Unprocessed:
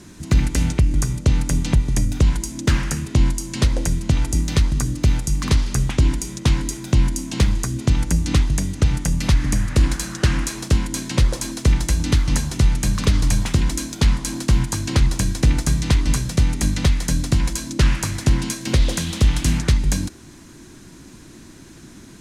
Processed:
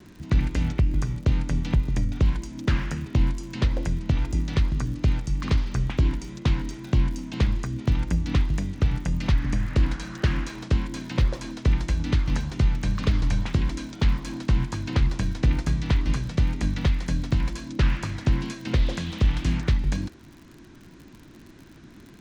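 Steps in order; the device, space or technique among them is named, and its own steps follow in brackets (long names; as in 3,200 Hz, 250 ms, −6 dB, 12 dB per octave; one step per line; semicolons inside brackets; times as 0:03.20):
lo-fi chain (low-pass filter 3,600 Hz 12 dB per octave; tape wow and flutter; surface crackle 56 per second −33 dBFS)
level −5 dB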